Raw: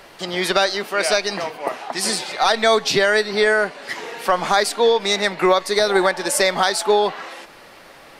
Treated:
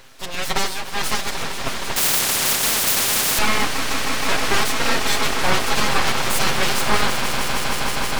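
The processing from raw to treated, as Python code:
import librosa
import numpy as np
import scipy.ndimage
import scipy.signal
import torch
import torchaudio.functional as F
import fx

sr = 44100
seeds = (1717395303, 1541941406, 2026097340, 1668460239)

p1 = fx.lower_of_two(x, sr, delay_ms=7.5)
p2 = p1 + fx.echo_swell(p1, sr, ms=157, loudest=8, wet_db=-11.0, dry=0)
p3 = np.abs(p2)
p4 = fx.spectral_comp(p3, sr, ratio=10.0, at=(1.96, 3.39))
y = p4 * librosa.db_to_amplitude(1.0)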